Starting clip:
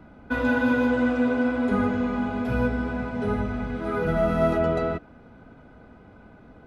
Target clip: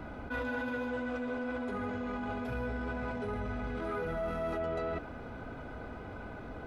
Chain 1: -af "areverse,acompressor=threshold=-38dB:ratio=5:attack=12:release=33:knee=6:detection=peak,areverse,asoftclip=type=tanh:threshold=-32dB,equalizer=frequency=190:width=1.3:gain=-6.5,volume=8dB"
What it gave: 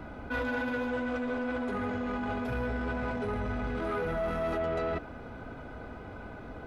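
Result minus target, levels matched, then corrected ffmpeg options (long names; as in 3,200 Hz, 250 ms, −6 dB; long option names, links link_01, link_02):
downward compressor: peak gain reduction −5 dB
-af "areverse,acompressor=threshold=-44dB:ratio=5:attack=12:release=33:knee=6:detection=peak,areverse,asoftclip=type=tanh:threshold=-32dB,equalizer=frequency=190:width=1.3:gain=-6.5,volume=8dB"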